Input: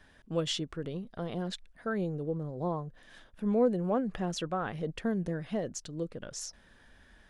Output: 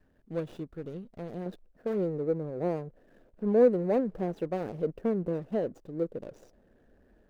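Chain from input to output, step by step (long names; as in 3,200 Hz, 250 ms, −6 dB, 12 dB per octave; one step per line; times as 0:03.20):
running median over 41 samples
parametric band 470 Hz +4.5 dB 2 octaves, from 0:01.46 +12 dB
level −4.5 dB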